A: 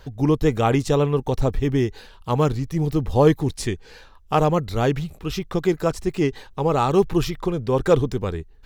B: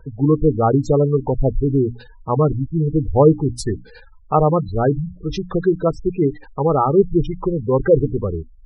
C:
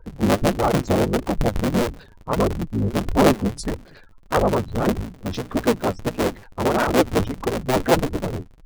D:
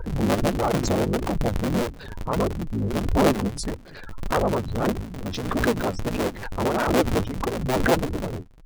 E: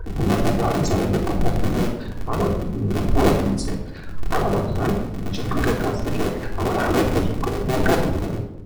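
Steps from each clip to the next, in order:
notches 60/120/180/240/300 Hz; spectral gate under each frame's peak -15 dB strong; gain +4 dB
cycle switcher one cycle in 3, inverted; flange 1.6 Hz, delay 1.8 ms, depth 9.5 ms, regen +34%
backwards sustainer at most 51 dB/s; gain -4 dB
reverb RT60 0.80 s, pre-delay 3 ms, DRR 0 dB; gain -2 dB

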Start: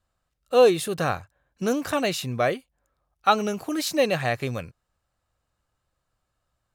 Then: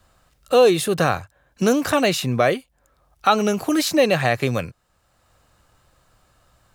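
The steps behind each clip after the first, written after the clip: in parallel at +1 dB: limiter -15 dBFS, peak gain reduction 10.5 dB; on the sum: three-band squash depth 40%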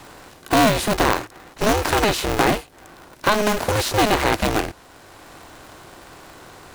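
per-bin compression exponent 0.6; polarity switched at an audio rate 210 Hz; gain -3.5 dB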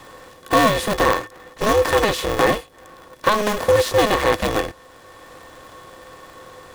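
small resonant body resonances 510/1100/1800/3400 Hz, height 15 dB, ringing for 0.1 s; gain -2.5 dB

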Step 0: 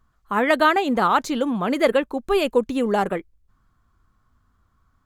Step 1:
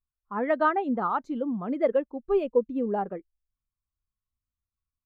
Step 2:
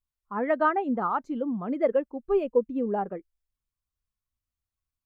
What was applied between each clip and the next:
high shelf 3300 Hz -8.5 dB; spectral expander 1.5:1; gain -6.5 dB
dynamic EQ 3800 Hz, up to -8 dB, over -59 dBFS, Q 3.4

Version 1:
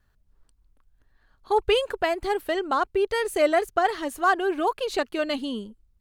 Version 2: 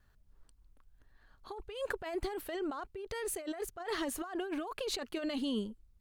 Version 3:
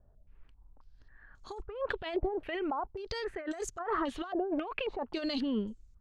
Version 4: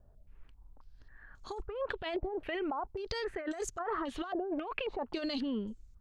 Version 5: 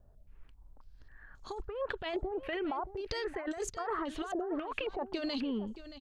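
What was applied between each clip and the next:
negative-ratio compressor -31 dBFS, ratio -1; gain -7 dB
low shelf 240 Hz +5.5 dB; stepped low-pass 3.7 Hz 630–6800 Hz
compressor, threshold -34 dBFS, peak gain reduction 8 dB; gain +2 dB
echo 0.625 s -14 dB

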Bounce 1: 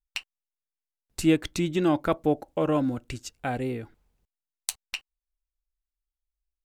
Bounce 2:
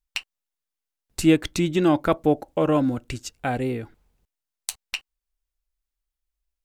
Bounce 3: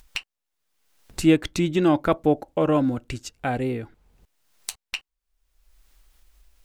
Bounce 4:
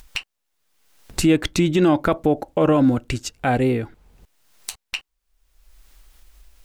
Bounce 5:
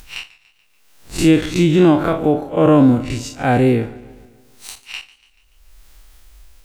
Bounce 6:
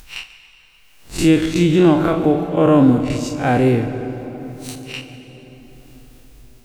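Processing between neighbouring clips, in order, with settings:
maximiser +9 dB; gain -5 dB
high shelf 5900 Hz -4 dB; upward compressor, threshold -34 dBFS
limiter -15.5 dBFS, peak gain reduction 8 dB; gain +7 dB
time blur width 94 ms; warbling echo 0.144 s, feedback 55%, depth 83 cents, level -20 dB; gain +6.5 dB
reverb RT60 4.6 s, pre-delay 56 ms, DRR 10 dB; gain -1 dB

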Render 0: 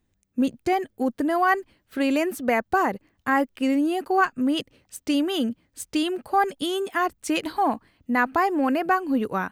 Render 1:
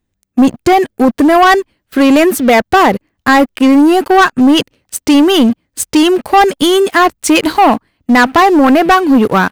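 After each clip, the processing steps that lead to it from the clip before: sample leveller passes 3; gain +7 dB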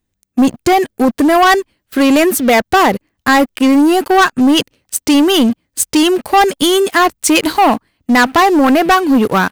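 high shelf 4000 Hz +6 dB; gain -2.5 dB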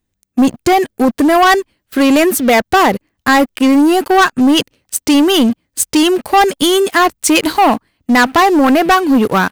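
nothing audible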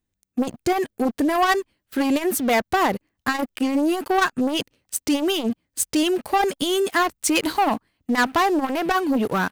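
core saturation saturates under 370 Hz; gain -8 dB

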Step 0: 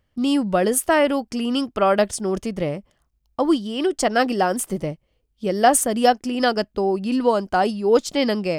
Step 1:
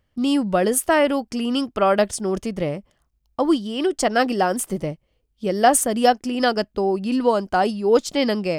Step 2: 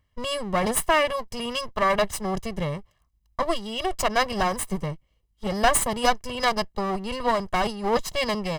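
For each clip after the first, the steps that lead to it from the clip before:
nothing audible
minimum comb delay 1.8 ms; comb 1 ms, depth 52%; gain -2.5 dB

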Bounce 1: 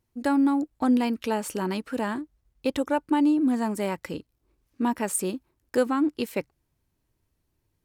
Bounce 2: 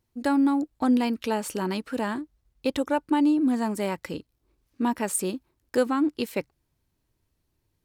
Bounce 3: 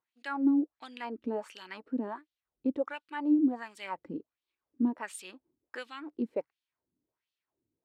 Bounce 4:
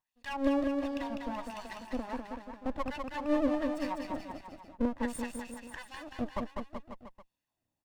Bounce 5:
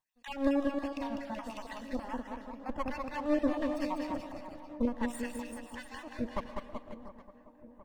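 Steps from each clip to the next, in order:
bell 4100 Hz +2.5 dB
wah 1.4 Hz 250–3500 Hz, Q 2.7
minimum comb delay 1.1 ms; on a send: bouncing-ball echo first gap 0.2 s, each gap 0.9×, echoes 5
random spectral dropouts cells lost 22%; dark delay 0.714 s, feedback 63%, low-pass 1200 Hz, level -16 dB; digital reverb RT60 0.97 s, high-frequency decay 0.85×, pre-delay 75 ms, DRR 12 dB

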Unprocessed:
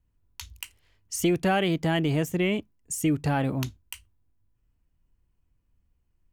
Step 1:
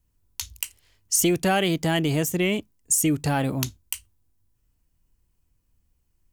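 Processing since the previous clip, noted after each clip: tone controls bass -1 dB, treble +10 dB; gain +2 dB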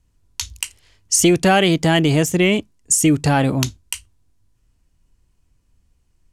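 LPF 8800 Hz 12 dB/oct; gain +7.5 dB

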